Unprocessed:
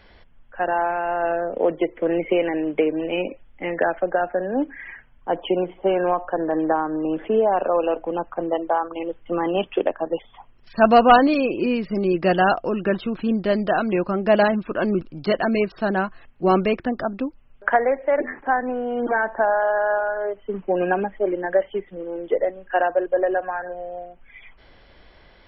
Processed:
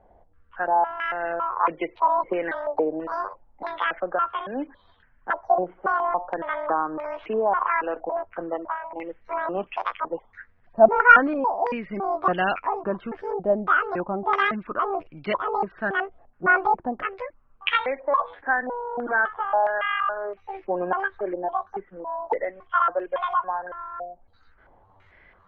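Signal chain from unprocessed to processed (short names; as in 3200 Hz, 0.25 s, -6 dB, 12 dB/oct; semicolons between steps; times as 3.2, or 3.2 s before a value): trilling pitch shifter +11.5 st, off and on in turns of 0.279 s; stepped low-pass 3 Hz 740–2400 Hz; gain -7.5 dB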